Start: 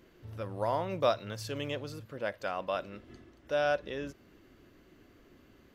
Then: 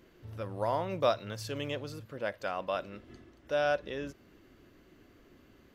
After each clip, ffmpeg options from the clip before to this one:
ffmpeg -i in.wav -af anull out.wav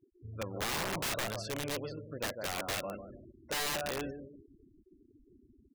ffmpeg -i in.wav -filter_complex "[0:a]asplit=2[link_01][link_02];[link_02]adelay=149,lowpass=frequency=1300:poles=1,volume=-7.5dB,asplit=2[link_03][link_04];[link_04]adelay=149,lowpass=frequency=1300:poles=1,volume=0.38,asplit=2[link_05][link_06];[link_06]adelay=149,lowpass=frequency=1300:poles=1,volume=0.38,asplit=2[link_07][link_08];[link_08]adelay=149,lowpass=frequency=1300:poles=1,volume=0.38[link_09];[link_01][link_03][link_05][link_07][link_09]amix=inputs=5:normalize=0,afftfilt=real='re*gte(hypot(re,im),0.00631)':imag='im*gte(hypot(re,im),0.00631)':win_size=1024:overlap=0.75,aeval=exprs='(mod(28.2*val(0)+1,2)-1)/28.2':channel_layout=same" out.wav

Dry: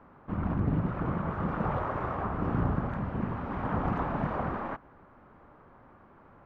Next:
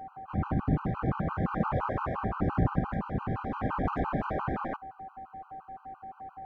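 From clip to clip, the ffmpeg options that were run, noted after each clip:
ffmpeg -i in.wav -af "aeval=exprs='val(0)+0.00794*sin(2*PI*770*n/s)':channel_layout=same,afftfilt=real='re*gt(sin(2*PI*5.8*pts/sr)*(1-2*mod(floor(b*sr/1024/790),2)),0)':imag='im*gt(sin(2*PI*5.8*pts/sr)*(1-2*mod(floor(b*sr/1024/790),2)),0)':win_size=1024:overlap=0.75,volume=3.5dB" out.wav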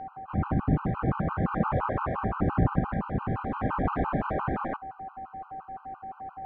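ffmpeg -i in.wav -af "areverse,acompressor=mode=upward:threshold=-38dB:ratio=2.5,areverse,lowpass=3100,volume=2.5dB" out.wav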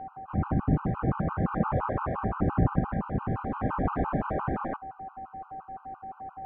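ffmpeg -i in.wav -af "highshelf=frequency=2800:gain=-11.5" out.wav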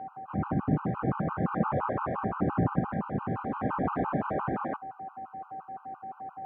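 ffmpeg -i in.wav -af "highpass=130" out.wav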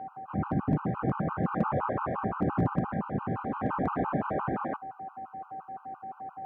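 ffmpeg -i in.wav -af "asoftclip=type=hard:threshold=-17.5dB" out.wav

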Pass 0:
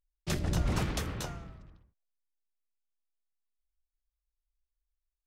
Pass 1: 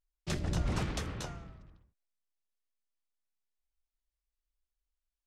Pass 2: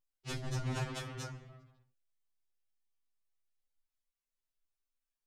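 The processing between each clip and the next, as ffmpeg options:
ffmpeg -i in.wav -af "lowpass=9200,volume=-2.5dB" out.wav
ffmpeg -i in.wav -af "afftfilt=real='re*2.45*eq(mod(b,6),0)':imag='im*2.45*eq(mod(b,6),0)':win_size=2048:overlap=0.75" out.wav

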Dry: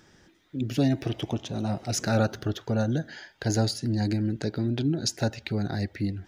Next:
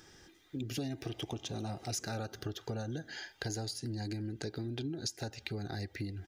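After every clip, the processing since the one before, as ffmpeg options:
ffmpeg -i in.wav -af "highshelf=frequency=4000:gain=7.5,aecho=1:1:2.5:0.36,acompressor=threshold=-33dB:ratio=6,volume=-2.5dB" out.wav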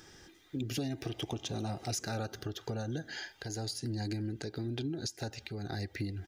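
ffmpeg -i in.wav -af "alimiter=level_in=3dB:limit=-24dB:level=0:latency=1:release=274,volume=-3dB,volume=2.5dB" out.wav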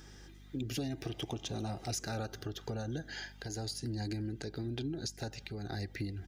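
ffmpeg -i in.wav -af "aeval=exprs='val(0)+0.00251*(sin(2*PI*50*n/s)+sin(2*PI*2*50*n/s)/2+sin(2*PI*3*50*n/s)/3+sin(2*PI*4*50*n/s)/4+sin(2*PI*5*50*n/s)/5)':channel_layout=same,volume=-1.5dB" out.wav

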